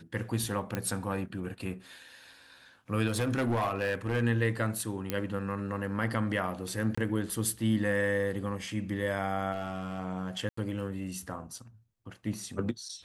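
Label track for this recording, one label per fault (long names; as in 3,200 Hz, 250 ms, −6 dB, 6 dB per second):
0.750000	0.750000	click −17 dBFS
3.080000	4.230000	clipping −24.5 dBFS
5.100000	5.100000	click −15 dBFS
6.950000	6.970000	drop-out 25 ms
9.520000	10.000000	clipping −28.5 dBFS
10.490000	10.570000	drop-out 84 ms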